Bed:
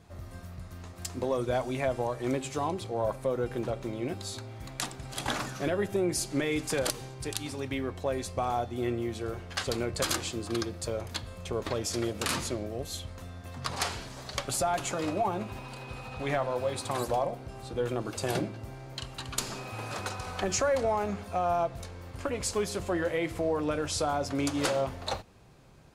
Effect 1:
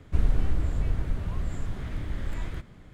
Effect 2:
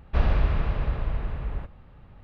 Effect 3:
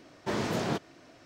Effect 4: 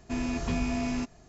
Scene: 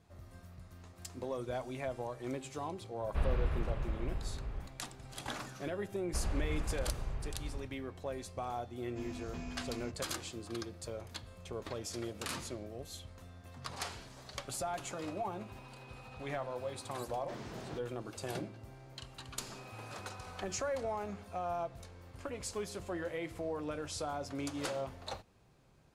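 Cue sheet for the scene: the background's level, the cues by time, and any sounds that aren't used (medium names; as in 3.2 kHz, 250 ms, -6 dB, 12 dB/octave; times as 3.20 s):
bed -9.5 dB
3.01 s: add 2 -10.5 dB
6.00 s: add 2 -11.5 dB + peak limiter -14.5 dBFS
8.86 s: add 4 -14.5 dB
17.01 s: add 3 -15.5 dB
not used: 1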